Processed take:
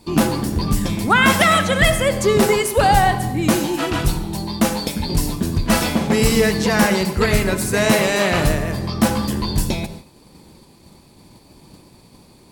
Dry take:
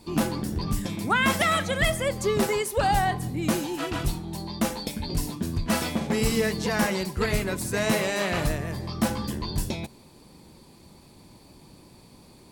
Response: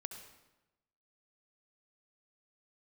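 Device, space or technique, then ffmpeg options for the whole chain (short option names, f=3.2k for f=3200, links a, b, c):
keyed gated reverb: -filter_complex "[0:a]asplit=3[a][b][c];[1:a]atrim=start_sample=2205[d];[b][d]afir=irnorm=-1:irlink=0[e];[c]apad=whole_len=552013[f];[e][f]sidechaingate=range=-33dB:threshold=-48dB:ratio=16:detection=peak,volume=4.5dB[g];[a][g]amix=inputs=2:normalize=0,volume=2dB"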